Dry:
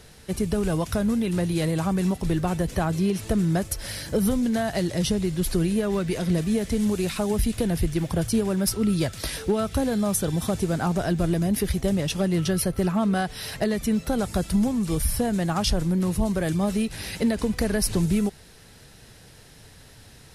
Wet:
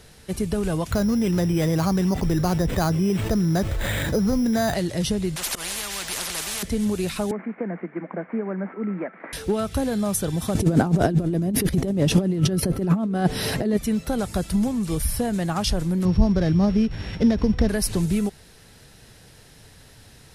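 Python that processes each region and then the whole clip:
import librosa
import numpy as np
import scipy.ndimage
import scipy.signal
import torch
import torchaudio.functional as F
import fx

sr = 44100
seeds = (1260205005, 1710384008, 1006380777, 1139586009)

y = fx.chain(x, sr, fx.resample_bad(factor=8, down='filtered', up='hold'),
    fx.env_flatten(amount_pct=70), at=(0.91, 4.74))
y = fx.chain(y, sr, fx.comb(ms=5.0, depth=0.34),
    fx.auto_swell(attack_ms=114.0),
    fx.spectral_comp(ratio=10.0), at=(5.36, 6.63))
y = fx.chain(y, sr, fx.cvsd(bps=32000),
    fx.cheby1_bandpass(low_hz=180.0, high_hz=2200.0, order=5),
    fx.low_shelf(hz=260.0, db=-6.0), at=(7.31, 9.33))
y = fx.chain(y, sr, fx.over_compress(threshold_db=-28.0, ratio=-0.5),
    fx.peak_eq(hz=280.0, db=13.0, octaves=2.7), at=(10.55, 13.77))
y = fx.chain(y, sr, fx.sample_sort(block=8),
    fx.lowpass(hz=3900.0, slope=12),
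    fx.low_shelf(hz=250.0, db=9.0), at=(16.05, 17.69))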